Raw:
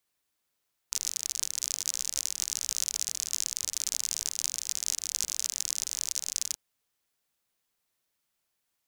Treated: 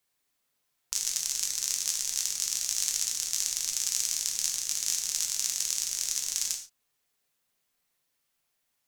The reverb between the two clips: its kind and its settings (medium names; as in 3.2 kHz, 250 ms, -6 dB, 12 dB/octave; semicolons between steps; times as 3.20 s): gated-style reverb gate 160 ms falling, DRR 1 dB